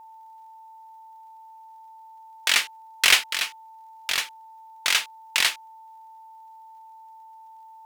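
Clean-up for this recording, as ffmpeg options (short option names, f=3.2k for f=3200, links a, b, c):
-af "adeclick=t=4,bandreject=f=890:w=30"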